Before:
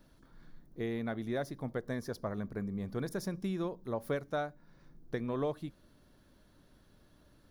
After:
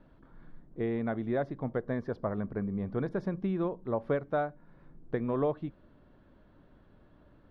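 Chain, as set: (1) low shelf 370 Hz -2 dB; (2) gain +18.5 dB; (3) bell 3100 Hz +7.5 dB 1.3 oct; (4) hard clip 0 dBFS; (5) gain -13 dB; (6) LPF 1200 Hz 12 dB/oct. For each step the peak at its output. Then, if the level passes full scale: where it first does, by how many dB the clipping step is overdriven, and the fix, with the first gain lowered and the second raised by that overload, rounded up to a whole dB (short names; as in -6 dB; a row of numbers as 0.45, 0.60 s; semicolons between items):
-22.5, -4.0, -3.0, -3.0, -16.0, -18.0 dBFS; no overload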